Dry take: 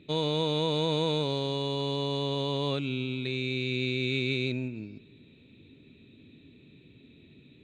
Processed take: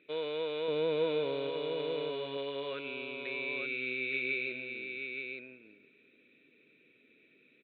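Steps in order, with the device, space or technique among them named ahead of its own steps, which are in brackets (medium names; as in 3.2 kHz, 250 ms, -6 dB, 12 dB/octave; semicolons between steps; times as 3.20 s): 0.68–1.50 s: bass shelf 350 Hz +11.5 dB; phone earpiece (cabinet simulation 440–3100 Hz, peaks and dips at 480 Hz +6 dB, 860 Hz -9 dB, 1.5 kHz +9 dB, 2.3 kHz +8 dB); delay 873 ms -5.5 dB; trim -6.5 dB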